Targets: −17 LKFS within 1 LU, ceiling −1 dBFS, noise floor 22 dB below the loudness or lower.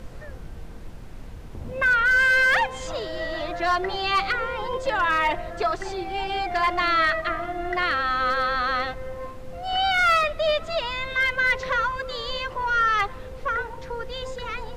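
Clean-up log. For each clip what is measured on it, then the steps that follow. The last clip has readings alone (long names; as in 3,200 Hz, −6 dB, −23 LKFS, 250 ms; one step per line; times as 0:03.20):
share of clipped samples 0.4%; peaks flattened at −14.5 dBFS; background noise floor −39 dBFS; target noise floor −46 dBFS; integrated loudness −23.5 LKFS; sample peak −14.5 dBFS; target loudness −17.0 LKFS
→ clipped peaks rebuilt −14.5 dBFS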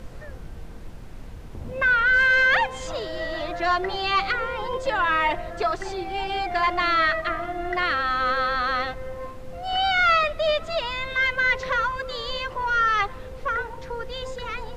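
share of clipped samples 0.0%; background noise floor −39 dBFS; target noise floor −45 dBFS
→ noise reduction from a noise print 6 dB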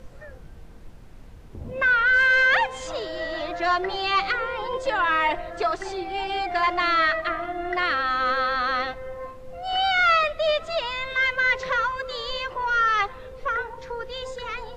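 background noise floor −44 dBFS; target noise floor −45 dBFS
→ noise reduction from a noise print 6 dB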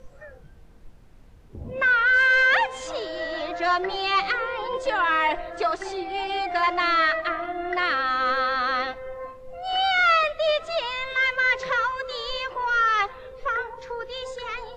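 background noise floor −49 dBFS; integrated loudness −23.0 LKFS; sample peak −10.5 dBFS; target loudness −17.0 LKFS
→ level +6 dB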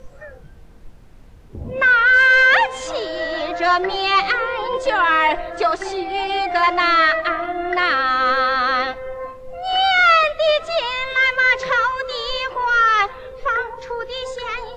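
integrated loudness −17.0 LKFS; sample peak −4.5 dBFS; background noise floor −43 dBFS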